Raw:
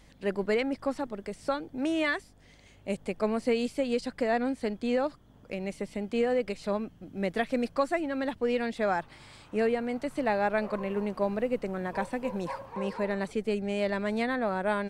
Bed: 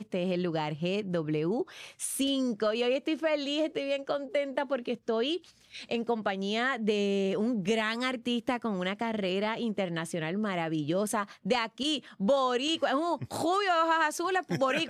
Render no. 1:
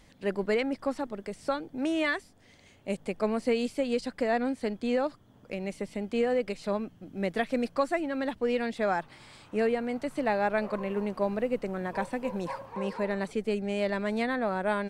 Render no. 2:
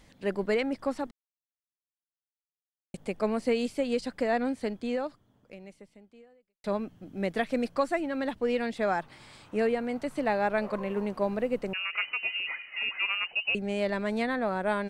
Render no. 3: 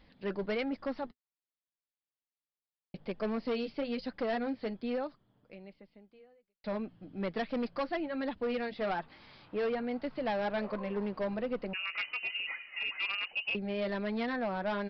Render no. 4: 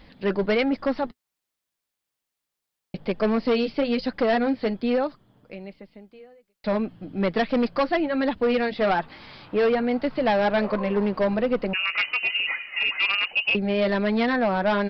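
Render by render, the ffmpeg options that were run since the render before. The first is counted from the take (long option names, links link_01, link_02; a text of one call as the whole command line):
ffmpeg -i in.wav -af "bandreject=frequency=50:width_type=h:width=4,bandreject=frequency=100:width_type=h:width=4,bandreject=frequency=150:width_type=h:width=4" out.wav
ffmpeg -i in.wav -filter_complex "[0:a]asettb=1/sr,asplit=3[link_01][link_02][link_03];[link_01]atrim=end=11.734[link_04];[link_02]atrim=start=11.73:end=13.55,asetpts=PTS-STARTPTS,afade=type=in:duration=0.004:curve=qsin,afade=type=out:start_time=1.816:duration=0.004:curve=qsin,lowpass=frequency=2600:width_type=q:width=0.5098,lowpass=frequency=2600:width_type=q:width=0.6013,lowpass=frequency=2600:width_type=q:width=0.9,lowpass=frequency=2600:width_type=q:width=2.563,afreqshift=-3000[link_05];[link_03]atrim=start=13.546[link_06];[link_04][link_05]acrossfade=duration=0.004:curve1=hsin:curve2=qsin[link_07];[link_07][link_06]acrossfade=duration=0.004:curve1=qsin:curve2=hsin,asplit=4[link_08][link_09][link_10][link_11];[link_08]atrim=end=1.11,asetpts=PTS-STARTPTS,afade=type=out:start_time=1.106:duration=0.004:curve=hsin[link_12];[link_09]atrim=start=1.11:end=2.94,asetpts=PTS-STARTPTS,volume=0[link_13];[link_10]atrim=start=2.94:end=6.64,asetpts=PTS-STARTPTS,afade=type=in:duration=0.004:curve=hsin,afade=type=out:start_time=1.65:duration=2.05:curve=qua[link_14];[link_11]atrim=start=6.64,asetpts=PTS-STARTPTS,afade=type=in:duration=0.004:curve=hsin[link_15];[link_12][link_13][link_14][link_15]concat=n=4:v=0:a=1" out.wav
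ffmpeg -i in.wav -af "flanger=delay=3.5:depth=3.4:regen=-50:speed=1.2:shape=triangular,aresample=11025,volume=28.5dB,asoftclip=hard,volume=-28.5dB,aresample=44100" out.wav
ffmpeg -i in.wav -af "volume=11.5dB" out.wav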